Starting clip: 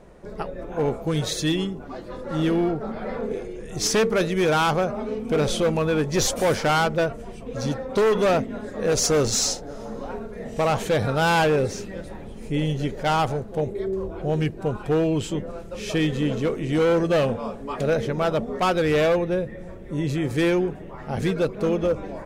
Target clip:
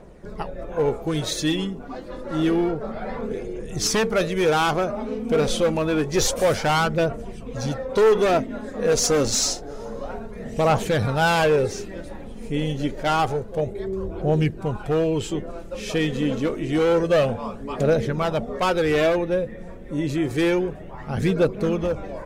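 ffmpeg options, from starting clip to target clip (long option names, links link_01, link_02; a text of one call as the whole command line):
ffmpeg -i in.wav -af "aphaser=in_gain=1:out_gain=1:delay=4.4:decay=0.36:speed=0.28:type=triangular" out.wav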